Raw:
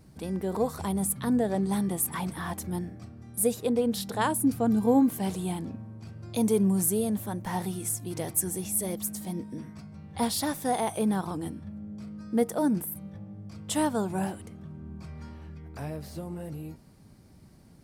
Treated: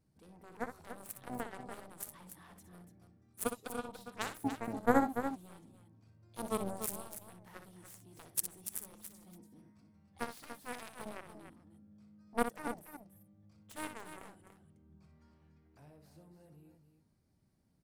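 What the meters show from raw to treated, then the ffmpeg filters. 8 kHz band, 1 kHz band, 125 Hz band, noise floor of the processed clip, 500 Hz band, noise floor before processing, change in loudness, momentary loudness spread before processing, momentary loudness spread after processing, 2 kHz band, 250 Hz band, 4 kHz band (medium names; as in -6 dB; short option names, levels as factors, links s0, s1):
-14.0 dB, -7.5 dB, -19.0 dB, -72 dBFS, -11.5 dB, -54 dBFS, -11.0 dB, 18 LU, 20 LU, -4.5 dB, -15.0 dB, -13.0 dB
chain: -af "aeval=exprs='0.316*(cos(1*acos(clip(val(0)/0.316,-1,1)))-cos(1*PI/2))+0.112*(cos(3*acos(clip(val(0)/0.316,-1,1)))-cos(3*PI/2))':c=same,aecho=1:1:61.22|288.6:0.355|0.355,volume=1.41"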